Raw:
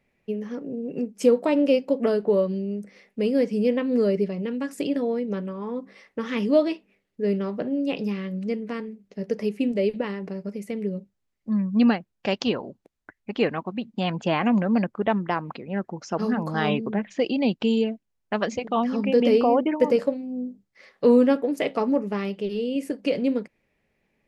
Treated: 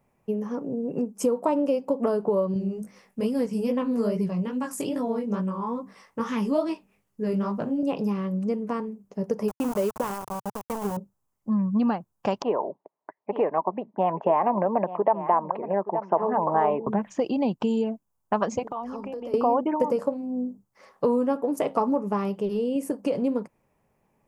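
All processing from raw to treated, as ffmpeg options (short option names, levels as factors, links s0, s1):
-filter_complex "[0:a]asettb=1/sr,asplit=3[s0][s1][s2];[s0]atrim=end=2.544[s3];[s1]atrim=start=2.54:end=7.83,asetpts=PTS-STARTPTS,afade=t=in:d=0.004:c=qsin,afade=t=out:st=5.286:d=0.004:c=qsin,equalizer=f=490:t=o:w=2.6:g=-8.5,acontrast=69,flanger=delay=15.5:depth=6.7:speed=2.4[s4];[s2]atrim=start=7.826[s5];[s3][s4]acrossfade=d=0.004:c1=hsin:c2=qsin[s6];[s6][s5]acrossfade=d=0.004:c1=qsin:c2=hsin,asettb=1/sr,asplit=3[s7][s8][s9];[s7]atrim=end=9.484[s10];[s8]atrim=start=9.48:end=10.97,asetpts=PTS-STARTPTS,afade=t=in:d=0.004:c=qsin,afade=t=out:st=1.486:d=0.004:c=qsin,equalizer=f=240:t=o:w=2.3:g=-3.5,aeval=exprs='val(0)*gte(abs(val(0)),0.0266)':c=same[s11];[s9]atrim=start=10.966[s12];[s10][s11]acrossfade=d=0.004:c1=hsin:c2=qsin[s13];[s13][s12]acrossfade=d=0.004:c1=qsin:c2=hsin,asettb=1/sr,asplit=3[s14][s15][s16];[s14]atrim=end=12.424[s17];[s15]atrim=start=12.42:end=16.87,asetpts=PTS-STARTPTS,afade=t=in:d=0.004:c=qsin,afade=t=out:st=4.446:d=0.004:c=qsin,highpass=f=200:w=0.5412,highpass=f=200:w=1.3066,equalizer=f=230:t=q:w=4:g=-9,equalizer=f=410:t=q:w=4:g=5,equalizer=f=620:t=q:w=4:g=9,equalizer=f=920:t=q:w=4:g=5,equalizer=f=1400:t=q:w=4:g=-8,equalizer=f=2000:t=q:w=4:g=5,lowpass=f=2300:w=0.5412,lowpass=f=2300:w=1.3066,aecho=1:1:873:0.158,atrim=end_sample=196245[s18];[s16]atrim=start=16.866[s19];[s17][s18]acrossfade=d=0.004:c1=hsin:c2=qsin[s20];[s20][s19]acrossfade=d=0.004:c1=qsin:c2=hsin,asettb=1/sr,asplit=3[s21][s22][s23];[s21]atrim=end=18.634[s24];[s22]atrim=start=18.63:end=19.34,asetpts=PTS-STARTPTS,afade=t=in:d=0.004:c=qsin,afade=t=out:st=0.706:d=0.004:c=qsin,highpass=f=260:w=0.5412,highpass=f=260:w=1.3066,acompressor=threshold=0.0251:ratio=20:attack=3.2:release=140:knee=1:detection=peak,tremolo=f=190:d=0.182[s25];[s23]atrim=start=19.336[s26];[s24][s25]acrossfade=d=0.004:c1=hsin:c2=qsin[s27];[s27][s26]acrossfade=d=0.004:c1=qsin:c2=hsin,highshelf=f=2800:g=8,acompressor=threshold=0.0708:ratio=4,equalizer=f=125:t=o:w=1:g=6,equalizer=f=1000:t=o:w=1:g=12,equalizer=f=2000:t=o:w=1:g=-10,equalizer=f=4000:t=o:w=1:g=-12"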